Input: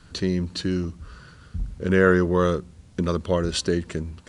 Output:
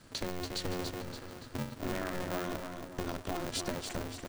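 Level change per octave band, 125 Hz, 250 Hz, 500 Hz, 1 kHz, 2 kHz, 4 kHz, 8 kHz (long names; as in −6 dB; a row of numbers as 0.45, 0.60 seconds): −15.5, −14.5, −15.5, −9.0, −14.0, −7.0, −5.5 decibels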